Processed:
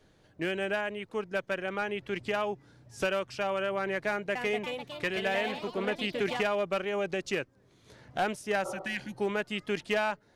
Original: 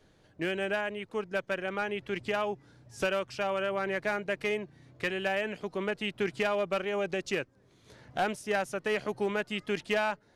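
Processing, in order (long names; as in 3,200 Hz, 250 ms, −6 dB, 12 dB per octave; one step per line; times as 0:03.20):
0:04.07–0:06.52: delay with pitch and tempo change per echo 282 ms, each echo +3 semitones, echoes 3, each echo −6 dB
0:08.68–0:09.11: healed spectral selection 340–1,400 Hz both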